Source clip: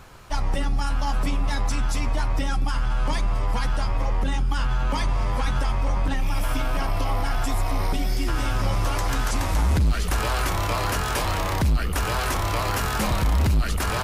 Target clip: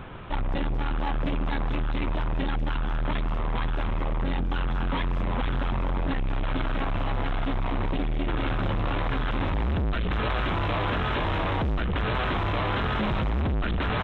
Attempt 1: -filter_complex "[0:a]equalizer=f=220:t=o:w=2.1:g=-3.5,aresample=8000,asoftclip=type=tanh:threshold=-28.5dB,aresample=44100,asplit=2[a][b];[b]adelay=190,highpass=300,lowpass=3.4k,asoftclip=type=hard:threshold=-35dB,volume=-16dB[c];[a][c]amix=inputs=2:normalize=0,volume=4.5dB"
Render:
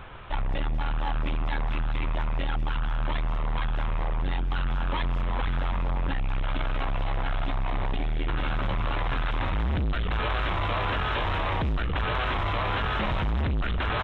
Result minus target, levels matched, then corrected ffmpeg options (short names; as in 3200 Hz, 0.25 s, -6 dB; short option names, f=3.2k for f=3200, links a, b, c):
250 Hz band -4.5 dB
-filter_complex "[0:a]equalizer=f=220:t=o:w=2.1:g=6.5,aresample=8000,asoftclip=type=tanh:threshold=-28.5dB,aresample=44100,asplit=2[a][b];[b]adelay=190,highpass=300,lowpass=3.4k,asoftclip=type=hard:threshold=-35dB,volume=-16dB[c];[a][c]amix=inputs=2:normalize=0,volume=4.5dB"